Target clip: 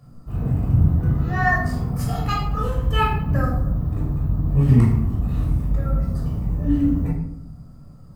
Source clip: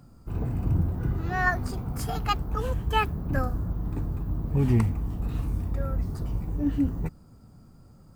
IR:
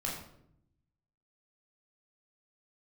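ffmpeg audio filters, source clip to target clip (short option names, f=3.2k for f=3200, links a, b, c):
-filter_complex "[0:a]bandreject=f=2.4k:w=23[a];[1:a]atrim=start_sample=2205,asetrate=42336,aresample=44100[b];[a][b]afir=irnorm=-1:irlink=0"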